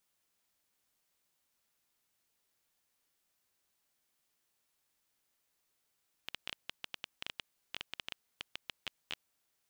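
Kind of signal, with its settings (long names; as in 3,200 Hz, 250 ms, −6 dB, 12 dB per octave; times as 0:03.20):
Geiger counter clicks 9.1 per second −21 dBFS 3.11 s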